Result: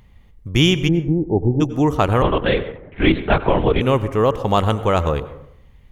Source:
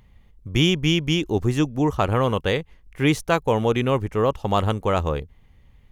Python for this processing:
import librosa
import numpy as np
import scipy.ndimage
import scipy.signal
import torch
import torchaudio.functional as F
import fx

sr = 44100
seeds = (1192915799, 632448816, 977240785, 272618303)

y = fx.steep_lowpass(x, sr, hz=900.0, slope=96, at=(0.87, 1.6), fade=0.02)
y = fx.rev_plate(y, sr, seeds[0], rt60_s=0.75, hf_ratio=0.4, predelay_ms=80, drr_db=13.0)
y = fx.lpc_vocoder(y, sr, seeds[1], excitation='whisper', order=10, at=(2.22, 3.81))
y = y * librosa.db_to_amplitude(4.0)